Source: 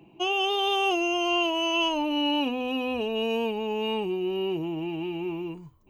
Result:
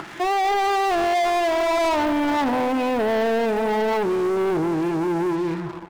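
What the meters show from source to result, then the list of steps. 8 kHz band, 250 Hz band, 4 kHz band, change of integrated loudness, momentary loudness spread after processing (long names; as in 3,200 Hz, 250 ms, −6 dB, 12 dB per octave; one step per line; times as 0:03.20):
+5.0 dB, +5.5 dB, −6.0 dB, +5.0 dB, 3 LU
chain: spike at every zero crossing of −27.5 dBFS
upward compression, threshold −32 dBFS
high-pass filter 82 Hz 12 dB per octave
parametric band 2,900 Hz −12.5 dB 0.22 octaves
repeating echo 241 ms, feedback 52%, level −14 dB
dynamic equaliser 670 Hz, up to +7 dB, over −46 dBFS, Q 6.3
auto-filter low-pass sine 1.5 Hz 900–1,800 Hz
leveller curve on the samples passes 5
level −7 dB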